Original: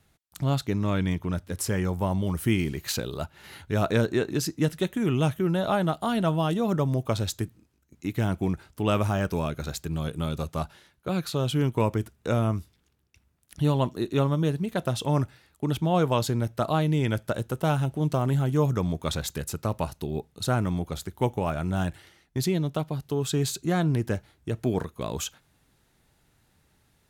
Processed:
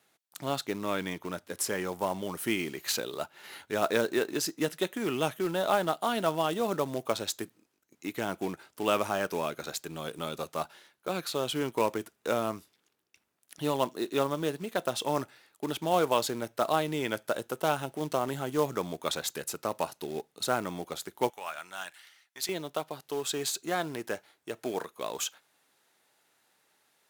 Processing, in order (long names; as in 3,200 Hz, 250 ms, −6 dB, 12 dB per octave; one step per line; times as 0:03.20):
high-pass filter 360 Hz 12 dB per octave, from 0:21.30 1,300 Hz, from 0:22.49 480 Hz
floating-point word with a short mantissa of 2 bits